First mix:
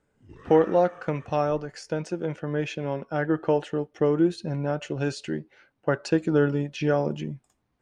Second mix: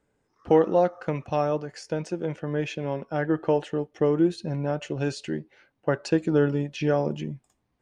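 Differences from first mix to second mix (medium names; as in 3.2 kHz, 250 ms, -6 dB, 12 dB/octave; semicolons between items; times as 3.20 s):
background: add two resonant band-passes 2.6 kHz, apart 2.1 oct; master: add peaking EQ 1.4 kHz -3.5 dB 0.31 oct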